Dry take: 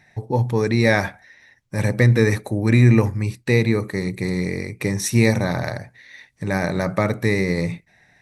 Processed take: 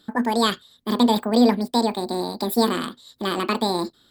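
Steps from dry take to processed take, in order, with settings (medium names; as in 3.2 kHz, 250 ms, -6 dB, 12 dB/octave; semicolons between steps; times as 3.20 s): speed mistake 7.5 ips tape played at 15 ips; peaking EQ 68 Hz +8 dB 1.9 oct; trim -3 dB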